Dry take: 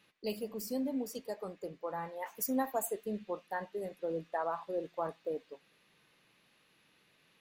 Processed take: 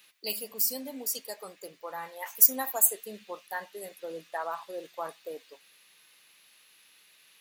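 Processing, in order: tilt +4.5 dB/oct; gain +2 dB

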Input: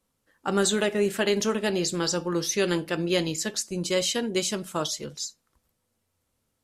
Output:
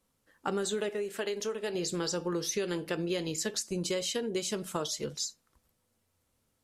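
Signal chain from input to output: dynamic EQ 440 Hz, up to +8 dB, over -42 dBFS, Q 4.8; compressor 10:1, threshold -29 dBFS, peak gain reduction 14 dB; 0.89–1.75 bell 110 Hz -10 dB 2.3 oct

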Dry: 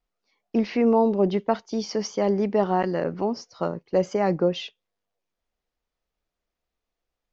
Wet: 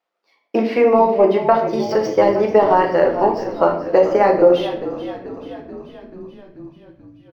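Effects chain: median filter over 5 samples; HPF 440 Hz 12 dB/oct; high shelf 4800 Hz -10.5 dB; transient shaper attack +4 dB, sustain -5 dB; on a send: frequency-shifting echo 0.435 s, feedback 63%, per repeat -39 Hz, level -14 dB; on the sum: shoebox room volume 100 m³, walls mixed, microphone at 0.69 m; maximiser +10 dB; gain -1 dB

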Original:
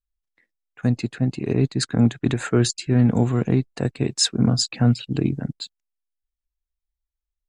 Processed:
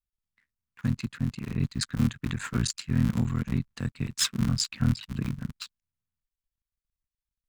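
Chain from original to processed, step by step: cycle switcher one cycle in 3, muted; band shelf 500 Hz -13 dB; gain -4.5 dB

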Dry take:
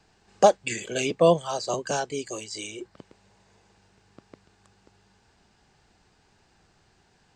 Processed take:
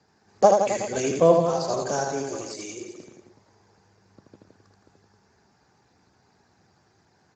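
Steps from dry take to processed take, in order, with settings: bell 3000 Hz -11 dB 0.48 oct; reverse bouncing-ball echo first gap 80 ms, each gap 1.1×, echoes 5; Speex 13 kbps 16000 Hz

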